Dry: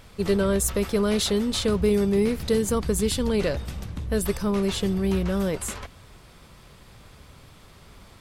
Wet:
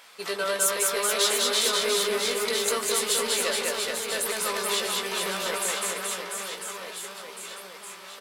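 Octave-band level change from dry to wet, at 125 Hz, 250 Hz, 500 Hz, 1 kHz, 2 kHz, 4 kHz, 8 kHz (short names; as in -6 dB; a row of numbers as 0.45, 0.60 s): -21.5, -16.5, -4.0, +6.0, +7.5, +7.0, +7.0 dB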